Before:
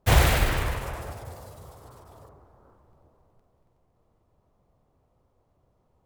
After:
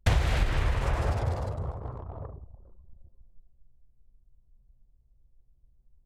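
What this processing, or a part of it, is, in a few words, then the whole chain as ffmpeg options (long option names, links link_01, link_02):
ASMR close-microphone chain: -af "anlmdn=0.0158,lowpass=5700,lowshelf=frequency=130:gain=7.5,acompressor=threshold=-31dB:ratio=8,highshelf=frequency=9300:gain=6,volume=9dB"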